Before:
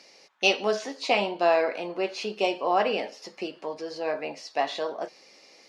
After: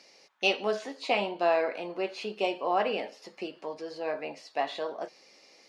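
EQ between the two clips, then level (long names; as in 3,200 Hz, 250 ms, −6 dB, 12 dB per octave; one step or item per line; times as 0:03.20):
dynamic equaliser 5,700 Hz, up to −7 dB, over −53 dBFS, Q 2.3
−3.5 dB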